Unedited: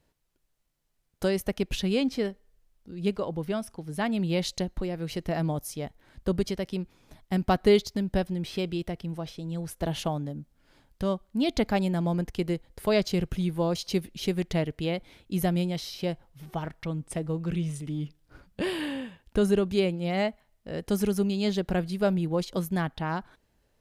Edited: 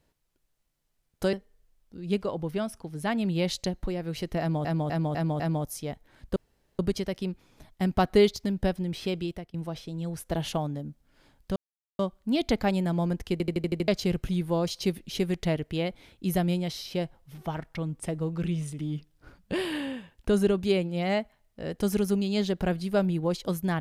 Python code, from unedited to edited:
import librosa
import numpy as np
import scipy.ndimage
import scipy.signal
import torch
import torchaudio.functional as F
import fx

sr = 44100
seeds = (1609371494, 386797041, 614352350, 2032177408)

y = fx.edit(x, sr, fx.cut(start_s=1.33, length_s=0.94),
    fx.repeat(start_s=5.34, length_s=0.25, count=5),
    fx.insert_room_tone(at_s=6.3, length_s=0.43),
    fx.fade_out_to(start_s=8.62, length_s=0.43, curve='qsin', floor_db=-22.0),
    fx.insert_silence(at_s=11.07, length_s=0.43),
    fx.stutter_over(start_s=12.4, slice_s=0.08, count=7), tone=tone)